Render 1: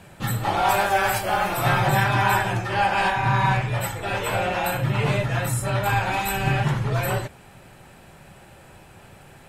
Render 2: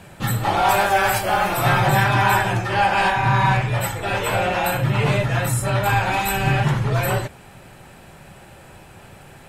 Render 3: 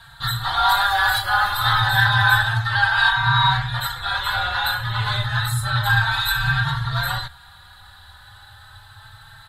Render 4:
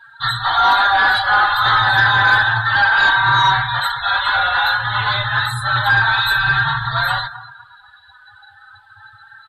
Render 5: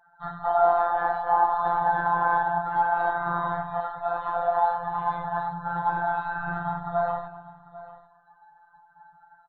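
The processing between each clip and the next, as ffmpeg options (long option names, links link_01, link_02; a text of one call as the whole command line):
ffmpeg -i in.wav -af "acontrast=68,volume=-3dB" out.wav
ffmpeg -i in.wav -filter_complex "[0:a]firequalizer=gain_entry='entry(110,0);entry(180,-23);entry(330,-24);entry(520,-22);entry(850,-2);entry(1600,6);entry(2400,-15);entry(3800,14);entry(5500,-10);entry(11000,-3)':delay=0.05:min_phase=1,asplit=2[link_01][link_02];[link_02]adelay=3.9,afreqshift=0.3[link_03];[link_01][link_03]amix=inputs=2:normalize=1,volume=3.5dB" out.wav
ffmpeg -i in.wav -filter_complex "[0:a]asplit=2[link_01][link_02];[link_02]adelay=247,lowpass=frequency=4400:poles=1,volume=-15.5dB,asplit=2[link_03][link_04];[link_04]adelay=247,lowpass=frequency=4400:poles=1,volume=0.41,asplit=2[link_05][link_06];[link_06]adelay=247,lowpass=frequency=4400:poles=1,volume=0.41,asplit=2[link_07][link_08];[link_08]adelay=247,lowpass=frequency=4400:poles=1,volume=0.41[link_09];[link_01][link_03][link_05][link_07][link_09]amix=inputs=5:normalize=0,asplit=2[link_10][link_11];[link_11]highpass=frequency=720:poles=1,volume=16dB,asoftclip=type=tanh:threshold=-4dB[link_12];[link_10][link_12]amix=inputs=2:normalize=0,lowpass=frequency=2400:poles=1,volume=-6dB,afftdn=noise_reduction=19:noise_floor=-30" out.wav
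ffmpeg -i in.wav -af "lowpass=frequency=730:width_type=q:width=4.9,afftfilt=real='hypot(re,im)*cos(PI*b)':imag='0':win_size=1024:overlap=0.75,aecho=1:1:795:0.133,volume=-5.5dB" out.wav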